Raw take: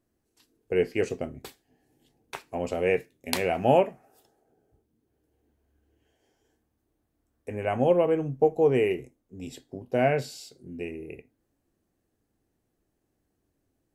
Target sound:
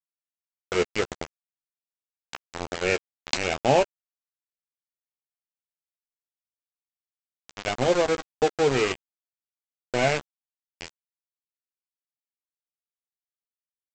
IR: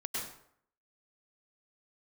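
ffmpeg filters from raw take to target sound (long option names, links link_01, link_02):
-filter_complex "[0:a]highshelf=frequency=2200:gain=7.5,aresample=16000,aeval=exprs='val(0)*gte(abs(val(0)),0.075)':channel_layout=same,aresample=44100,asplit=2[link_01][link_02];[link_02]adelay=14,volume=-12.5dB[link_03];[link_01][link_03]amix=inputs=2:normalize=0"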